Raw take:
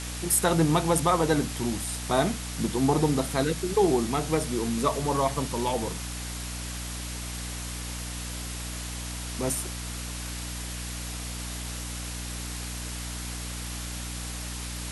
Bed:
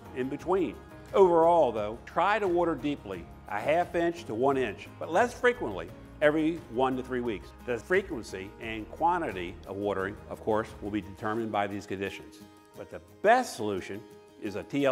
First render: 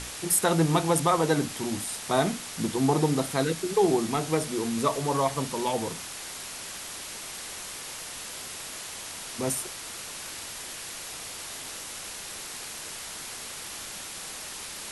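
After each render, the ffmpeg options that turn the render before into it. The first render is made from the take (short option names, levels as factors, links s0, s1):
-af "bandreject=f=60:t=h:w=6,bandreject=f=120:t=h:w=6,bandreject=f=180:t=h:w=6,bandreject=f=240:t=h:w=6,bandreject=f=300:t=h:w=6"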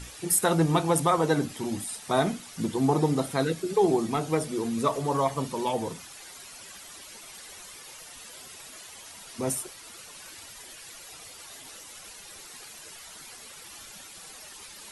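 -af "afftdn=nr=11:nf=-39"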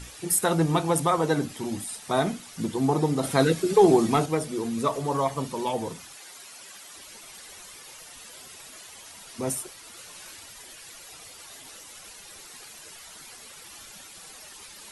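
-filter_complex "[0:a]asettb=1/sr,asplit=3[s0][s1][s2];[s0]atrim=end=3.234[s3];[s1]atrim=start=3.23:end=4.26,asetpts=PTS-STARTPTS,afade=t=in:d=0.004:c=qsin,afade=t=out:st=1.026:d=0.004:c=qsin,acontrast=44[s4];[s2]atrim=start=4.256[s5];[s3][s4]acrossfade=d=0.004:c1=hsin:c2=qsin[s6];[s6][s5]acrossfade=d=0.004:c1=qsin:c2=hsin,asettb=1/sr,asplit=3[s7][s8][s9];[s7]atrim=end=6.154[s10];[s8]atrim=start=6.15:end=6.95,asetpts=PTS-STARTPTS,afade=t=in:d=0.004:c=qsin,afade=t=out:st=0.796:d=0.004:c=qsin,highpass=f=270:p=1[s11];[s9]atrim=start=6.946[s12];[s10][s11]acrossfade=d=0.004:c1=hsin:c2=qsin[s13];[s13][s12]acrossfade=d=0.004:c1=qsin:c2=hsin,asettb=1/sr,asplit=3[s14][s15][s16];[s14]atrim=end=9.954[s17];[s15]atrim=start=9.95:end=10.36,asetpts=PTS-STARTPTS,afade=t=in:d=0.004:c=qsin,afade=t=out:st=0.406:d=0.004:c=qsin,asplit=2[s18][s19];[s19]adelay=17,volume=0.596[s20];[s18][s20]amix=inputs=2:normalize=0,atrim=end_sample=18081[s21];[s16]atrim=start=10.356[s22];[s17][s21]acrossfade=d=0.004:c1=hsin:c2=qsin[s23];[s23][s22]acrossfade=d=0.004:c1=qsin:c2=hsin"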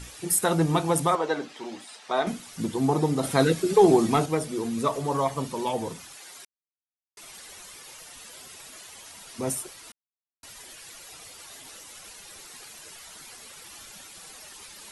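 -filter_complex "[0:a]asettb=1/sr,asplit=3[s0][s1][s2];[s0]atrim=end=1.154[s3];[s1]atrim=start=1.15:end=2.27,asetpts=PTS-STARTPTS,afade=t=in:d=0.004:c=qsin,afade=t=out:st=1.116:d=0.004:c=qsin,highpass=410,lowpass=4700[s4];[s2]atrim=start=2.266[s5];[s3][s4]acrossfade=d=0.004:c1=hsin:c2=qsin[s6];[s6][s5]acrossfade=d=0.004:c1=qsin:c2=hsin,asplit=5[s7][s8][s9][s10][s11];[s7]atrim=end=6.45,asetpts=PTS-STARTPTS,afade=t=out:st=6.446:d=0.004:c=hsin[s12];[s8]atrim=start=6.45:end=7.17,asetpts=PTS-STARTPTS,volume=0[s13];[s9]atrim=start=7.17:end=9.92,asetpts=PTS-STARTPTS,afade=t=in:d=0.004:c=hsin,afade=t=out:st=2.746:d=0.004:c=hsin[s14];[s10]atrim=start=9.92:end=10.43,asetpts=PTS-STARTPTS,volume=0[s15];[s11]atrim=start=10.43,asetpts=PTS-STARTPTS,afade=t=in:d=0.004:c=hsin[s16];[s12][s13][s14][s15][s16]concat=n=5:v=0:a=1"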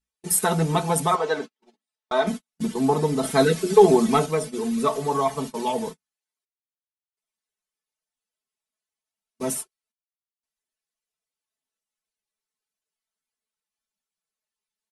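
-af "agate=range=0.00355:threshold=0.0251:ratio=16:detection=peak,aecho=1:1:4.6:0.8"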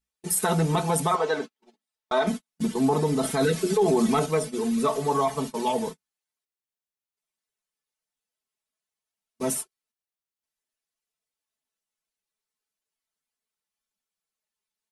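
-af "alimiter=limit=0.2:level=0:latency=1:release=20"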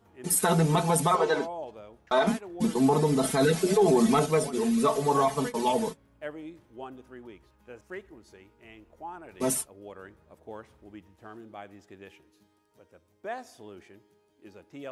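-filter_complex "[1:a]volume=0.188[s0];[0:a][s0]amix=inputs=2:normalize=0"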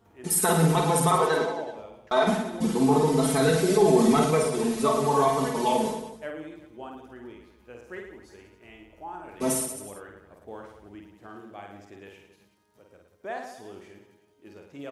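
-af "aecho=1:1:50|110|182|268.4|372.1:0.631|0.398|0.251|0.158|0.1"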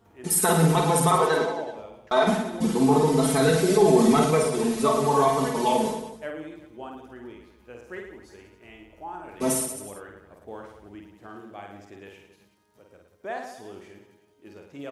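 -af "volume=1.19"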